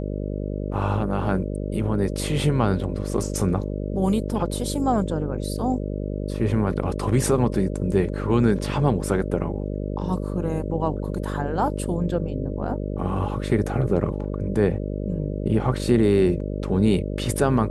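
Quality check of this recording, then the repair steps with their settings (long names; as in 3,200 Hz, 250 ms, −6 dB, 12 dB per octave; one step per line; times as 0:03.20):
mains buzz 50 Hz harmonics 12 −28 dBFS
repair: hum removal 50 Hz, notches 12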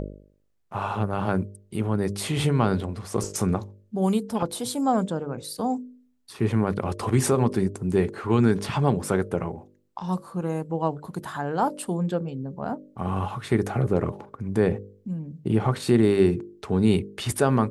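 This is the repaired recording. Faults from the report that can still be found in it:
none of them is left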